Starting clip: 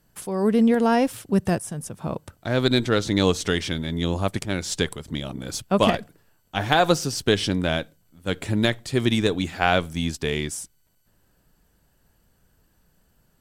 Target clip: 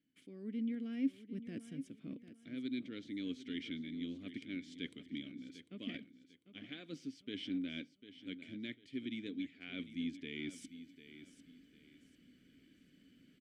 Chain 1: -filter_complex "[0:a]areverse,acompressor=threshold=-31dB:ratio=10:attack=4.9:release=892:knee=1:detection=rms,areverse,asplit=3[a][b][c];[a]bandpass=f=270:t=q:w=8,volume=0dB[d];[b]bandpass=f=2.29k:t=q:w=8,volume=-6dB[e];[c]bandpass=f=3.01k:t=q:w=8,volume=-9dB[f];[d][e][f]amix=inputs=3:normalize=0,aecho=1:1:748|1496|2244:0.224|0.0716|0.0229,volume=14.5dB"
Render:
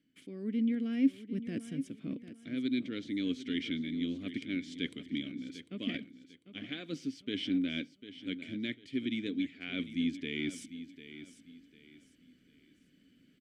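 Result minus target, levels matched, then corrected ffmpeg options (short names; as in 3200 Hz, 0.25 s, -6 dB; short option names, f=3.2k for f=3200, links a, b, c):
compressor: peak gain reduction -7.5 dB
-filter_complex "[0:a]areverse,acompressor=threshold=-39.5dB:ratio=10:attack=4.9:release=892:knee=1:detection=rms,areverse,asplit=3[a][b][c];[a]bandpass=f=270:t=q:w=8,volume=0dB[d];[b]bandpass=f=2.29k:t=q:w=8,volume=-6dB[e];[c]bandpass=f=3.01k:t=q:w=8,volume=-9dB[f];[d][e][f]amix=inputs=3:normalize=0,aecho=1:1:748|1496|2244:0.224|0.0716|0.0229,volume=14.5dB"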